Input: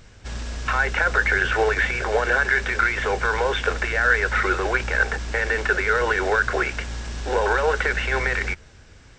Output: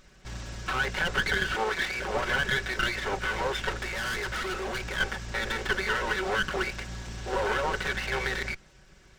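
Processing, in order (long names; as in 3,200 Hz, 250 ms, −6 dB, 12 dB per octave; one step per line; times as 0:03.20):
lower of the sound and its delayed copy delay 5.3 ms
0:01.55–0:01.99: low-shelf EQ 190 Hz −9.5 dB
0:03.82–0:04.96: gain into a clipping stage and back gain 23.5 dB
level −5.5 dB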